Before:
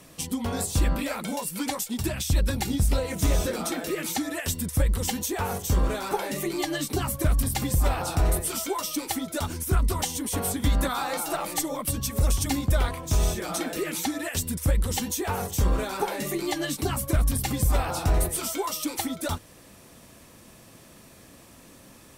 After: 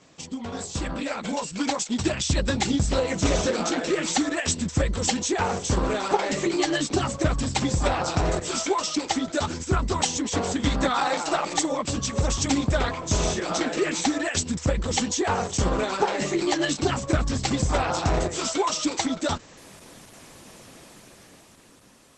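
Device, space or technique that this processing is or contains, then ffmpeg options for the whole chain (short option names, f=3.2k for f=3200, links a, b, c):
video call: -af "highpass=f=170:p=1,dynaudnorm=f=190:g=13:m=8.5dB,volume=-2dB" -ar 48000 -c:a libopus -b:a 12k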